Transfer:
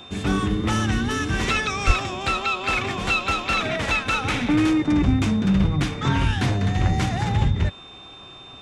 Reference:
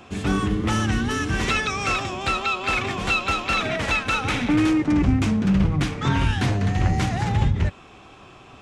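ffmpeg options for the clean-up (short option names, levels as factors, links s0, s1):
-filter_complex "[0:a]bandreject=f=3600:w=30,asplit=3[s0][s1][s2];[s0]afade=t=out:st=1.86:d=0.02[s3];[s1]highpass=f=140:w=0.5412,highpass=f=140:w=1.3066,afade=t=in:st=1.86:d=0.02,afade=t=out:st=1.98:d=0.02[s4];[s2]afade=t=in:st=1.98:d=0.02[s5];[s3][s4][s5]amix=inputs=3:normalize=0"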